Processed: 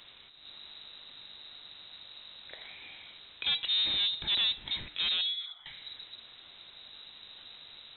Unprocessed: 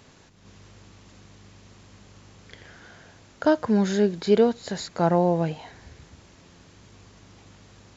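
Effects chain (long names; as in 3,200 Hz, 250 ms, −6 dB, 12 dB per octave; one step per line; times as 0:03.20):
asymmetric clip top −31 dBFS
0:05.21–0:05.66: formant filter e
hum removal 171.5 Hz, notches 37
soft clipping −26 dBFS, distortion −7 dB
voice inversion scrambler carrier 3,900 Hz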